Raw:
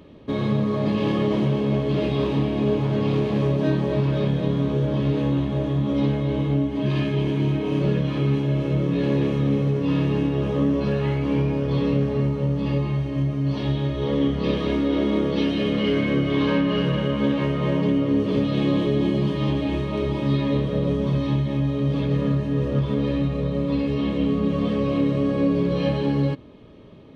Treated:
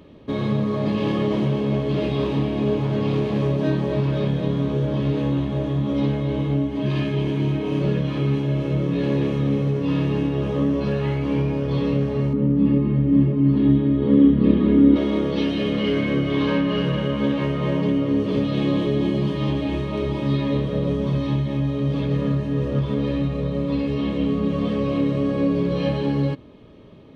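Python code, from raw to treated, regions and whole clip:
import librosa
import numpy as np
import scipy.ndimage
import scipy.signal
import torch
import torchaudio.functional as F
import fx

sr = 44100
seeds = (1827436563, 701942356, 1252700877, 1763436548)

y = fx.chain(x, sr, fx.curve_eq(hz=(150.0, 230.0, 450.0, 690.0, 1300.0, 1900.0, 3600.0, 8500.0), db=(0, 13, 1, -7, -3, -5, -10, -27)),
    fx.echo_single(ms=541, db=-5.5), at=(12.33, 14.96))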